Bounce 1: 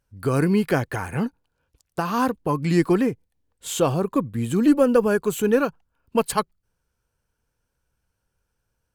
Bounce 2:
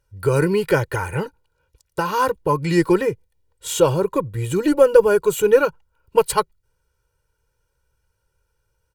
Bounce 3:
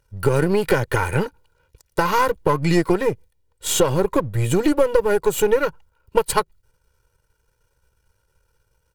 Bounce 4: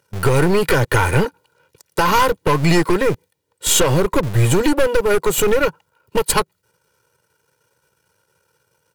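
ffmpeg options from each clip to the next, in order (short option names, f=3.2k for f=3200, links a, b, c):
-af "aecho=1:1:2.1:0.95,volume=1dB"
-af "aeval=exprs='if(lt(val(0),0),0.447*val(0),val(0))':c=same,acompressor=threshold=-20dB:ratio=6,volume=7dB"
-filter_complex "[0:a]acrossover=split=120|1600[a][b][c];[a]acrusher=bits=5:mix=0:aa=0.000001[d];[b]asoftclip=type=hard:threshold=-20dB[e];[d][e][c]amix=inputs=3:normalize=0,volume=6.5dB"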